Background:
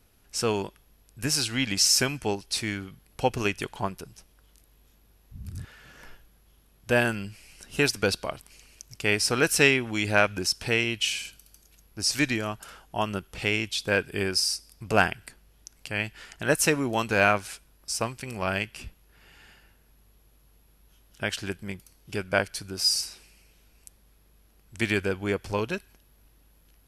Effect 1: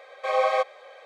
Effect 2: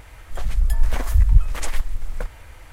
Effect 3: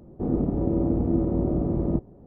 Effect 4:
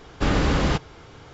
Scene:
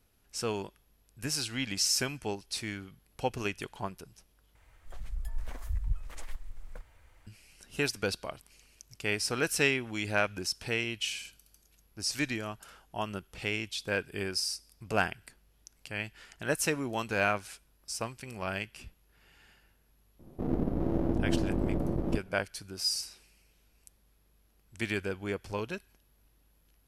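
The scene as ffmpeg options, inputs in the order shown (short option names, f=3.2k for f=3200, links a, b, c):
-filter_complex "[0:a]volume=-7dB[a];[3:a]aeval=exprs='if(lt(val(0),0),0.251*val(0),val(0))':c=same[b];[a]asplit=2[c][d];[c]atrim=end=4.554[e];[2:a]atrim=end=2.72,asetpts=PTS-STARTPTS,volume=-17.5dB[f];[d]atrim=start=7.266[g];[b]atrim=end=2.26,asetpts=PTS-STARTPTS,volume=-3dB,afade=t=in:d=0.004:c=hsin,afade=t=out:st=2.256:d=0.004:c=hsin,adelay=20190[h];[e][f]acrossfade=d=0.004:c1=hsin:c2=hsin[i];[i][g]acrossfade=d=0.004:c1=hsin:c2=hsin[j];[j][h]amix=inputs=2:normalize=0"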